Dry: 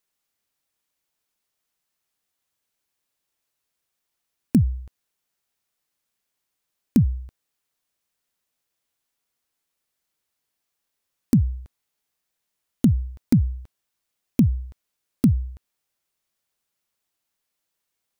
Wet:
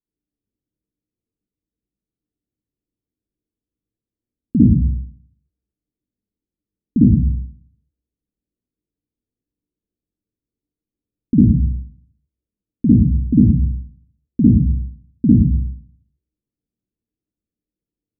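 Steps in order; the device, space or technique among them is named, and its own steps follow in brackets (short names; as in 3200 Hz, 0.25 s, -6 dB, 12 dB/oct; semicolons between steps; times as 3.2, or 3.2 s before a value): next room (LPF 360 Hz 24 dB/oct; reverb RT60 0.50 s, pre-delay 48 ms, DRR -8 dB); gain -1 dB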